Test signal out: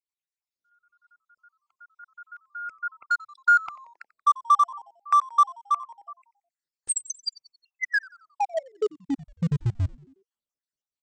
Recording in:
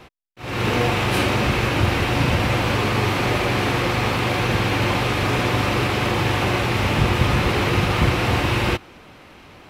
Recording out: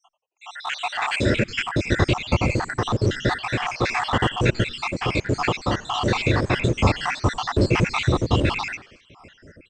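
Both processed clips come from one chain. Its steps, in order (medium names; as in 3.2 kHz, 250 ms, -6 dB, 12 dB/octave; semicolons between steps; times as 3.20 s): random holes in the spectrogram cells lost 72%; level rider gain up to 4 dB; in parallel at -10.5 dB: small samples zeroed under -19.5 dBFS; on the sum: brick-wall FIR low-pass 8.6 kHz; on a send: frequency-shifting echo 90 ms, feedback 50%, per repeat -120 Hz, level -20.5 dB; on the sum: random flutter of the level, depth 55%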